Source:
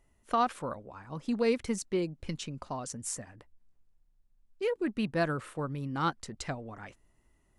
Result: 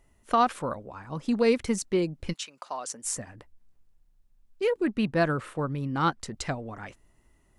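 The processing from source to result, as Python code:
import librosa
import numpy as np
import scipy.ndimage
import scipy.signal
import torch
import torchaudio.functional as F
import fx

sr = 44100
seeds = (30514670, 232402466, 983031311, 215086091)

y = fx.highpass(x, sr, hz=fx.line((2.32, 1300.0), (3.04, 380.0)), slope=12, at=(2.32, 3.04), fade=0.02)
y = fx.high_shelf(y, sr, hz=6000.0, db=-6.0, at=(4.87, 6.2))
y = F.gain(torch.from_numpy(y), 5.0).numpy()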